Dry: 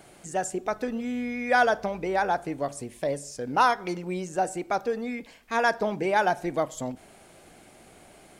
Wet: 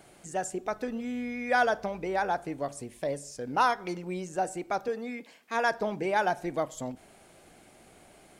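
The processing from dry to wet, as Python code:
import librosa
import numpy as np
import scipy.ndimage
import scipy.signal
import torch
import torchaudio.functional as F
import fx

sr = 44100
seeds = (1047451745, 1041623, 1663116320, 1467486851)

y = fx.highpass(x, sr, hz=200.0, slope=12, at=(4.88, 5.72))
y = y * 10.0 ** (-3.5 / 20.0)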